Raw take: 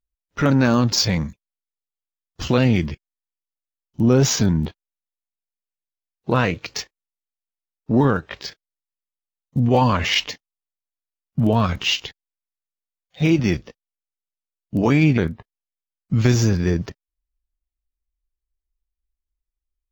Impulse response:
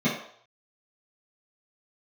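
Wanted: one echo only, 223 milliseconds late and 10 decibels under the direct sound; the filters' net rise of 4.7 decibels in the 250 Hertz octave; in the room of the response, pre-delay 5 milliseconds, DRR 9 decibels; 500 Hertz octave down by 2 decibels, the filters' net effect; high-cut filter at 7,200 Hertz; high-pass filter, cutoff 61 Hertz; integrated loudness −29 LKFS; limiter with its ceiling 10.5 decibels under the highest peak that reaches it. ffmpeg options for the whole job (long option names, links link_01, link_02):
-filter_complex "[0:a]highpass=61,lowpass=7200,equalizer=frequency=250:width_type=o:gain=7,equalizer=frequency=500:width_type=o:gain=-5.5,alimiter=limit=-13dB:level=0:latency=1,aecho=1:1:223:0.316,asplit=2[link_01][link_02];[1:a]atrim=start_sample=2205,adelay=5[link_03];[link_02][link_03]afir=irnorm=-1:irlink=0,volume=-22dB[link_04];[link_01][link_04]amix=inputs=2:normalize=0,volume=-10.5dB"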